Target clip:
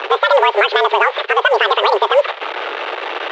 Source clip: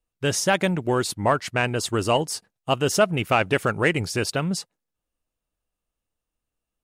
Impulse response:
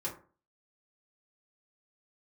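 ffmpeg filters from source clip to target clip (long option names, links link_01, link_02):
-filter_complex "[0:a]aeval=exprs='val(0)+0.5*0.0398*sgn(val(0))':channel_layout=same,acompressor=threshold=-26dB:ratio=4,asplit=2[link_01][link_02];[1:a]atrim=start_sample=2205,highshelf=frequency=4000:gain=3[link_03];[link_02][link_03]afir=irnorm=-1:irlink=0,volume=-19dB[link_04];[link_01][link_04]amix=inputs=2:normalize=0,asoftclip=type=tanh:threshold=-16.5dB,highshelf=frequency=2800:gain=-2,asetrate=90846,aresample=44100,highpass=frequency=220:width_type=q:width=0.5412,highpass=frequency=220:width_type=q:width=1.307,lowpass=frequency=3400:width_type=q:width=0.5176,lowpass=frequency=3400:width_type=q:width=0.7071,lowpass=frequency=3400:width_type=q:width=1.932,afreqshift=190,alimiter=level_in=19.5dB:limit=-1dB:release=50:level=0:latency=1,volume=-1dB" -ar 16000 -c:a pcm_mulaw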